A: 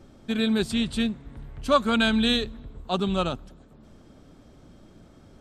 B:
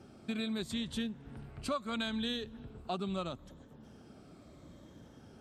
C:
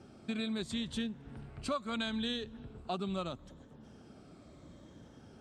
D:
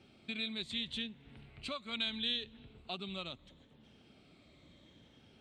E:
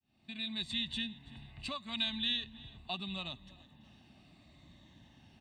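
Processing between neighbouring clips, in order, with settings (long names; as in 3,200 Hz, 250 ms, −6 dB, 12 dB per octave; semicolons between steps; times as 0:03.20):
rippled gain that drifts along the octave scale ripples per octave 1.1, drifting −0.74 Hz, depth 6 dB; high-pass filter 68 Hz 12 dB per octave; downward compressor 4 to 1, threshold −32 dBFS, peak gain reduction 16 dB; level −3 dB
low-pass filter 10,000 Hz 24 dB per octave
flat-topped bell 2,900 Hz +12.5 dB 1.3 octaves; level −8 dB
fade in at the beginning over 0.61 s; comb filter 1.1 ms, depth 76%; repeating echo 333 ms, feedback 43%, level −22 dB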